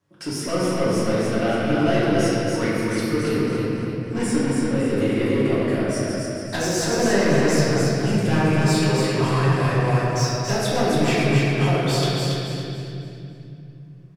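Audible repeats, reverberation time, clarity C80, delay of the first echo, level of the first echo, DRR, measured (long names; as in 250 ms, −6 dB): 1, 2.7 s, −4.0 dB, 280 ms, −3.5 dB, −11.0 dB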